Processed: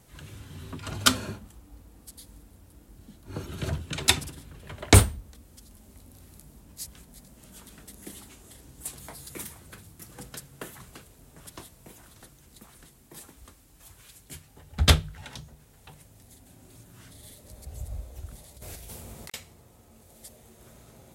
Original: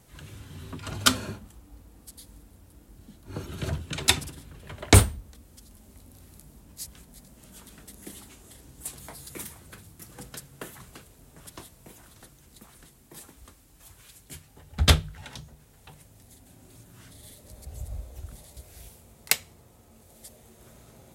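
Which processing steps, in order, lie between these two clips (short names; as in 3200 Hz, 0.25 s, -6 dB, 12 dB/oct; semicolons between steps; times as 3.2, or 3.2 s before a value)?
18.56–19.34 negative-ratio compressor -50 dBFS, ratio -1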